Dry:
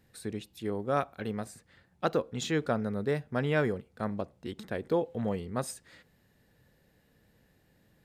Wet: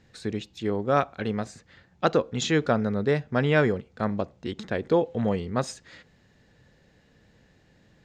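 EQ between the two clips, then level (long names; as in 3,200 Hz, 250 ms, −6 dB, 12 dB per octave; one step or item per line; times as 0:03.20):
high-frequency loss of the air 190 metres
high-shelf EQ 3,200 Hz +8.5 dB
parametric band 6,900 Hz +8.5 dB 0.62 octaves
+6.5 dB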